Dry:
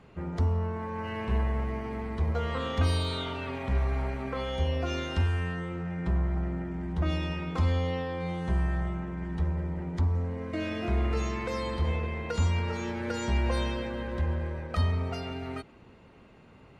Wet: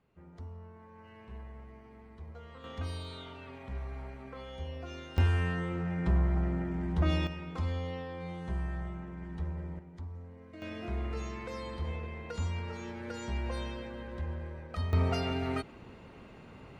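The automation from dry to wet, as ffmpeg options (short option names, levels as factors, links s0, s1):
-af "asetnsamples=n=441:p=0,asendcmd='2.64 volume volume -12dB;5.18 volume volume 0.5dB;7.27 volume volume -7.5dB;9.79 volume volume -16dB;10.62 volume volume -8dB;14.93 volume volume 3.5dB',volume=0.119"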